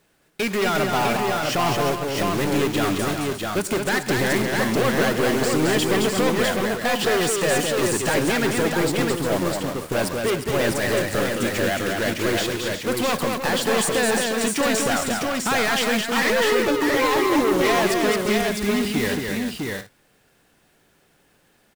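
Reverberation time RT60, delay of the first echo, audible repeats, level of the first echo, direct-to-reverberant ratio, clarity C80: no reverb audible, 104 ms, 5, −18.5 dB, no reverb audible, no reverb audible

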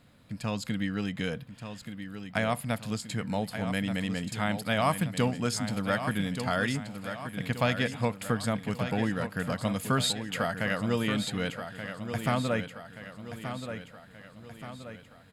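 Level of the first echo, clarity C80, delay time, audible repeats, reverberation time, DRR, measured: −9.0 dB, no reverb audible, 1,178 ms, 5, no reverb audible, no reverb audible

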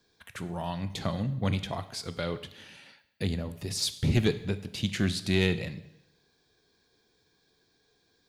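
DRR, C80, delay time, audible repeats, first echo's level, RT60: 11.5 dB, 16.5 dB, no echo audible, no echo audible, no echo audible, 0.85 s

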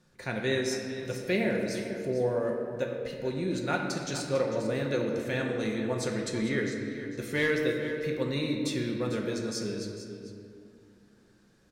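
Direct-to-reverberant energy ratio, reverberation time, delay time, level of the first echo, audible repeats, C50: 0.5 dB, 2.2 s, 448 ms, −12.5 dB, 1, 3.0 dB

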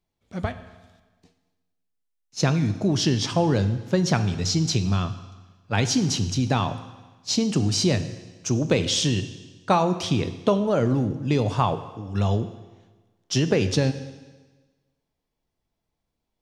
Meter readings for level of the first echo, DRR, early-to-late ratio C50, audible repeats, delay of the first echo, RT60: no echo audible, 10.0 dB, 12.0 dB, no echo audible, no echo audible, 1.3 s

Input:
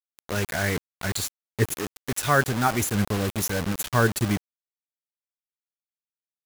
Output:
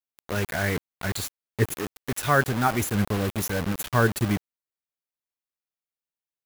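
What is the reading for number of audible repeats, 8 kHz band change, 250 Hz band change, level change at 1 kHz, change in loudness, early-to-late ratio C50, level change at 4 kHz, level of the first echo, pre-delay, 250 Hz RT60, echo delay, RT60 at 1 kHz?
no echo audible, −4.0 dB, 0.0 dB, 0.0 dB, −0.5 dB, no reverb audible, −2.5 dB, no echo audible, no reverb audible, no reverb audible, no echo audible, no reverb audible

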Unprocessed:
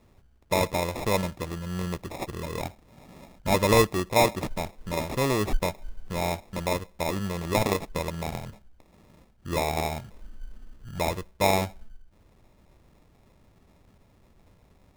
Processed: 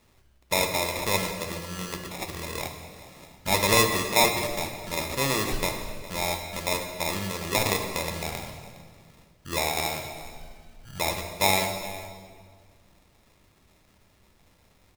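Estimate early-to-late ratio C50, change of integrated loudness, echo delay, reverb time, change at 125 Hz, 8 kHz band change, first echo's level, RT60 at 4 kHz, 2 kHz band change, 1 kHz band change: 6.0 dB, +1.0 dB, 411 ms, 1.8 s, −3.5 dB, +7.0 dB, −18.0 dB, 1.5 s, +4.5 dB, 0.0 dB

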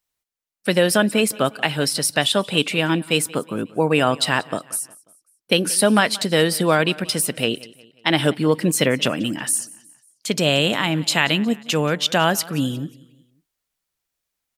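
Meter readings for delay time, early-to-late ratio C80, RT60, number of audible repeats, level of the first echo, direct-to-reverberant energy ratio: 180 ms, no reverb audible, no reverb audible, 3, −21.5 dB, no reverb audible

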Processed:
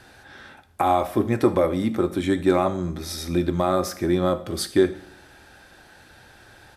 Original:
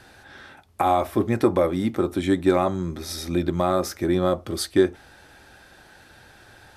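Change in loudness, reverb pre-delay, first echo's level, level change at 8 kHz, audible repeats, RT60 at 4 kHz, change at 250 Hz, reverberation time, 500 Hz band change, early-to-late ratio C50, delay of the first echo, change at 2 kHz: +0.5 dB, 14 ms, −21.0 dB, +0.5 dB, 1, 0.60 s, +0.5 dB, 0.65 s, 0.0 dB, 14.5 dB, 76 ms, +0.5 dB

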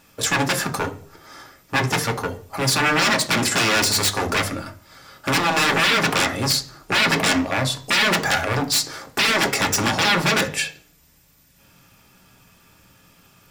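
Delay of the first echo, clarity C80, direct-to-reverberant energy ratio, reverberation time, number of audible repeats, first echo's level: no echo audible, 20.5 dB, 5.0 dB, 0.40 s, no echo audible, no echo audible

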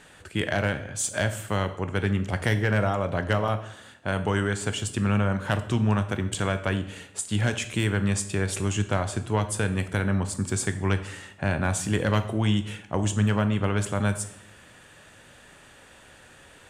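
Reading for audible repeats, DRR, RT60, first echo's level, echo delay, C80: no echo audible, 9.0 dB, 0.70 s, no echo audible, no echo audible, 15.5 dB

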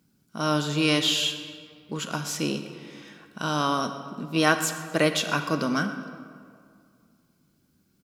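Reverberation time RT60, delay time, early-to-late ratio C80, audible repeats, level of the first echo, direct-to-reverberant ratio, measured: 2.2 s, 123 ms, 10.0 dB, 1, −18.0 dB, 8.5 dB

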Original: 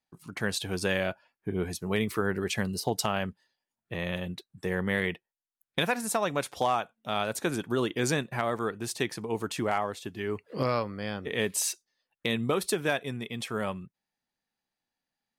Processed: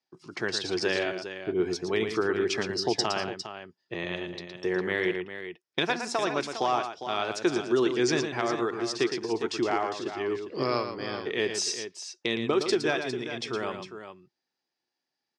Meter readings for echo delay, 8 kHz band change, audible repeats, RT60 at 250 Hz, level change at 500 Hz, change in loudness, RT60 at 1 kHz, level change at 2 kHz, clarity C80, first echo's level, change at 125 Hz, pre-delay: 114 ms, −2.0 dB, 2, no reverb audible, +3.5 dB, +1.5 dB, no reverb audible, +1.0 dB, no reverb audible, −8.0 dB, −6.0 dB, no reverb audible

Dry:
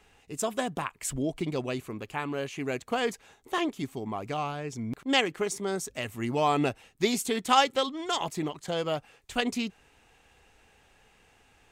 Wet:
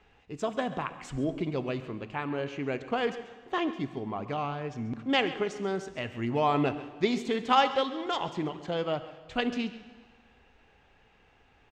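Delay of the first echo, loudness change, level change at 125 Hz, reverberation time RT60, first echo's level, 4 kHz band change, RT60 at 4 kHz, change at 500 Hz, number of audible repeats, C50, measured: 136 ms, −1.0 dB, +0.5 dB, 1.6 s, −16.5 dB, −3.5 dB, 1.5 s, 0.0 dB, 1, 11.5 dB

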